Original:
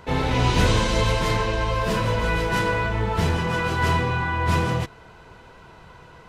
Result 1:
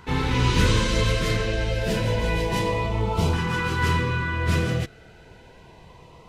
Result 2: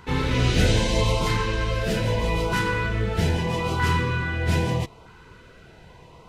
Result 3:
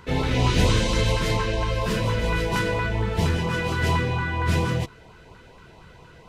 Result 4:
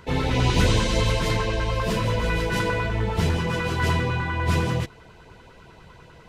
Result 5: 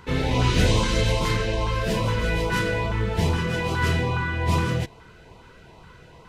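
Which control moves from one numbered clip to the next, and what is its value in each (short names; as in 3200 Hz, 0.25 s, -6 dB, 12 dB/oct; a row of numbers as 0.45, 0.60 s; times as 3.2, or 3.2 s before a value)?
LFO notch, rate: 0.3, 0.79, 4.3, 10, 2.4 Hz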